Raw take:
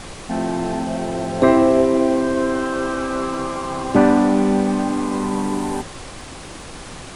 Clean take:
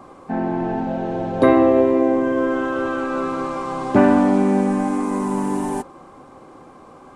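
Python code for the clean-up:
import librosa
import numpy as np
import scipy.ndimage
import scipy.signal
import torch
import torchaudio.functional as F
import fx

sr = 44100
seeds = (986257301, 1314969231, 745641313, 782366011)

y = fx.fix_declick_ar(x, sr, threshold=6.5)
y = fx.noise_reduce(y, sr, print_start_s=6.19, print_end_s=6.69, reduce_db=9.0)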